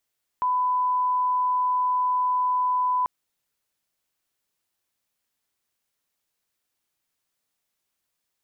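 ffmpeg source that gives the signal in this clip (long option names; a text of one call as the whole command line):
ffmpeg -f lavfi -i "sine=frequency=1000:duration=2.64:sample_rate=44100,volume=-1.94dB" out.wav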